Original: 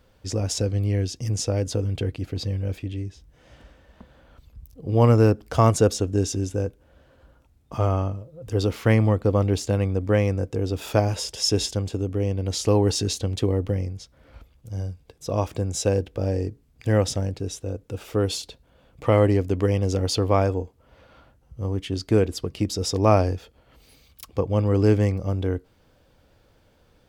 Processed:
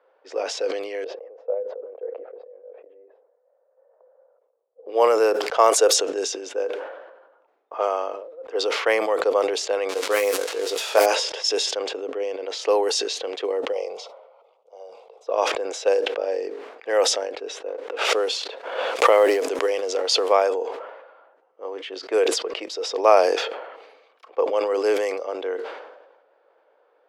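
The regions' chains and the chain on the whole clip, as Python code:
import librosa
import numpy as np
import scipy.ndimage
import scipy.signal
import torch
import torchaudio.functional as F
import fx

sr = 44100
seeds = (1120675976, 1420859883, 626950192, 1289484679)

y = fx.chain(x, sr, fx.chopper(hz=1.1, depth_pct=65, duty_pct=55),
    fx.ladder_bandpass(hz=560.0, resonance_pct=70), at=(1.04, 4.86))
y = fx.chain(y, sr, fx.crossing_spikes(level_db=-22.0),
    fx.doubler(ms=20.0, db=-5.0), at=(9.89, 11.06))
y = fx.chain(y, sr, fx.fixed_phaser(hz=690.0, stages=4),
    fx.sustainer(db_per_s=140.0), at=(13.72, 15.27))
y = fx.chain(y, sr, fx.law_mismatch(coded='A'),
    fx.pre_swell(db_per_s=35.0), at=(17.68, 20.32))
y = fx.env_lowpass(y, sr, base_hz=1300.0, full_db=-14.5)
y = scipy.signal.sosfilt(scipy.signal.butter(6, 430.0, 'highpass', fs=sr, output='sos'), y)
y = fx.sustainer(y, sr, db_per_s=49.0)
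y = y * librosa.db_to_amplitude(4.0)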